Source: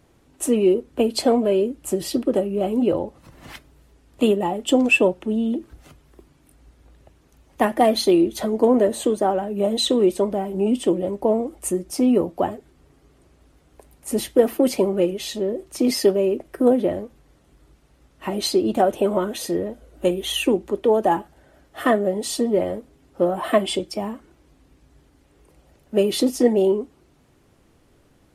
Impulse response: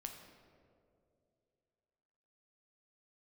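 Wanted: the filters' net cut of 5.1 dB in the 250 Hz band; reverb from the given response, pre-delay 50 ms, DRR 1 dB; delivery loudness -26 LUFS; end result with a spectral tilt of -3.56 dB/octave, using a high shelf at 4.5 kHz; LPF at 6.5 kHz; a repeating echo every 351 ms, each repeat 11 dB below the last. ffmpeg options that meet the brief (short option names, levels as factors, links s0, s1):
-filter_complex "[0:a]lowpass=6500,equalizer=f=250:t=o:g=-6.5,highshelf=f=4500:g=-4,aecho=1:1:351|702|1053:0.282|0.0789|0.0221,asplit=2[s0][s1];[1:a]atrim=start_sample=2205,adelay=50[s2];[s1][s2]afir=irnorm=-1:irlink=0,volume=1.33[s3];[s0][s3]amix=inputs=2:normalize=0,volume=0.562"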